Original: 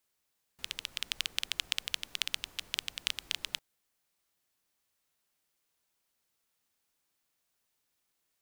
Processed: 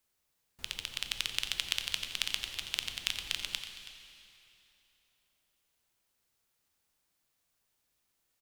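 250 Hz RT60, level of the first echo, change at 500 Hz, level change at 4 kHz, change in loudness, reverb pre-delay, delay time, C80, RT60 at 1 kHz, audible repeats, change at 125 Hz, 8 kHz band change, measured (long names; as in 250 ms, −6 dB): 3.0 s, −13.0 dB, +1.5 dB, +1.0 dB, +1.0 dB, 5 ms, 88 ms, 6.5 dB, 2.9 s, 2, +5.5 dB, +1.0 dB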